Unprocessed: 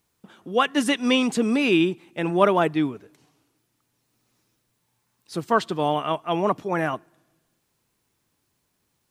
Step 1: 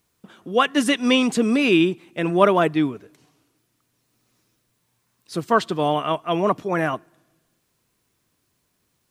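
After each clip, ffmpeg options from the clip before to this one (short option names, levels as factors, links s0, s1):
-af "bandreject=f=850:w=12,volume=1.33"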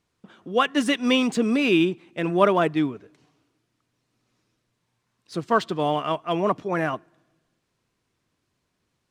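-af "adynamicsmooth=sensitivity=6:basefreq=6900,volume=0.75"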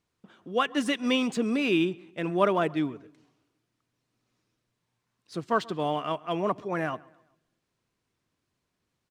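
-filter_complex "[0:a]asplit=2[s0][s1];[s1]adelay=132,lowpass=f=3200:p=1,volume=0.0708,asplit=2[s2][s3];[s3]adelay=132,lowpass=f=3200:p=1,volume=0.43,asplit=2[s4][s5];[s5]adelay=132,lowpass=f=3200:p=1,volume=0.43[s6];[s0][s2][s4][s6]amix=inputs=4:normalize=0,volume=0.562"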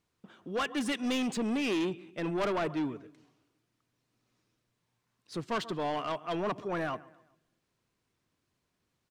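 -af "asoftclip=type=tanh:threshold=0.0447"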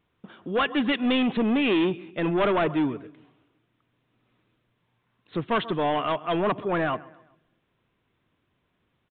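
-af "aresample=8000,aresample=44100,volume=2.51"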